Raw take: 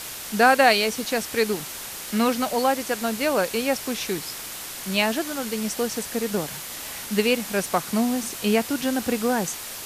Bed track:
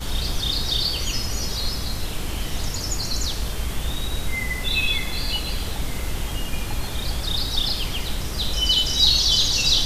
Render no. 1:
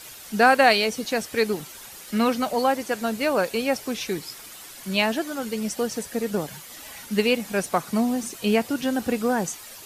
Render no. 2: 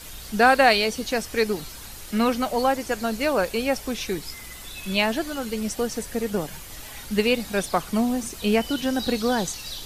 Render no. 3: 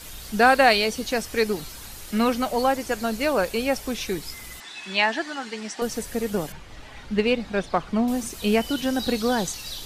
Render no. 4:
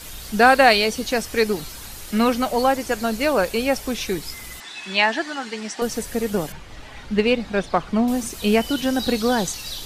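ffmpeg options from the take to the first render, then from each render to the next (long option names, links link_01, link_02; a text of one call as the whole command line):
ffmpeg -i in.wav -af "afftdn=noise_reduction=10:noise_floor=-36" out.wav
ffmpeg -i in.wav -i bed.wav -filter_complex "[1:a]volume=-17.5dB[link_01];[0:a][link_01]amix=inputs=2:normalize=0" out.wav
ffmpeg -i in.wav -filter_complex "[0:a]asettb=1/sr,asplit=3[link_01][link_02][link_03];[link_01]atrim=end=4.604[link_04];[link_02]atrim=start=4.6:end=5.82,asetpts=PTS-STARTPTS,afade=type=in:duration=0.004:curve=qsin,afade=type=out:start_time=1.216:duration=0.004:curve=qsin,highpass=320,equalizer=frequency=520:width_type=q:width=4:gain=-10,equalizer=frequency=860:width_type=q:width=4:gain=5,equalizer=frequency=1800:width_type=q:width=4:gain=8,equalizer=frequency=6600:width_type=q:width=4:gain=-3,lowpass=frequency=7300:width=0.5412,lowpass=frequency=7300:width=1.3066[link_05];[link_03]atrim=start=5.816[link_06];[link_04][link_05]acrossfade=duration=0.004:curve1=hsin:curve2=qsin[link_07];[link_07][link_06]acrossfade=duration=0.004:curve1=qsin:curve2=hsin,asettb=1/sr,asplit=3[link_08][link_09][link_10];[link_08]atrim=end=6.524[link_11];[link_09]atrim=start=6.52:end=8.08,asetpts=PTS-STARTPTS,afade=type=in:duration=0.004:curve=qsin,afade=type=out:start_time=1.556:duration=0.004:curve=qsin,adynamicsmooth=sensitivity=0.5:basefreq=3600[link_12];[link_10]atrim=start=8.076[link_13];[link_11][link_12]acrossfade=duration=0.004:curve1=hsin:curve2=qsin[link_14];[link_14][link_13]acrossfade=duration=0.004:curve1=qsin:curve2=hsin" out.wav
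ffmpeg -i in.wav -af "volume=3dB" out.wav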